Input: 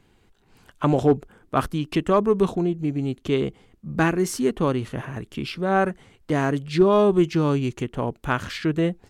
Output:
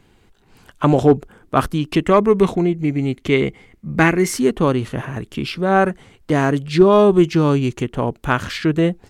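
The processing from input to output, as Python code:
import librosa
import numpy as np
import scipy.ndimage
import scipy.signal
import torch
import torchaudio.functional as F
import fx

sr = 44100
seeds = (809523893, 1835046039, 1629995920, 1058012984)

y = fx.peak_eq(x, sr, hz=2100.0, db=11.5, octaves=0.31, at=(2.03, 4.39))
y = y * librosa.db_to_amplitude(5.5)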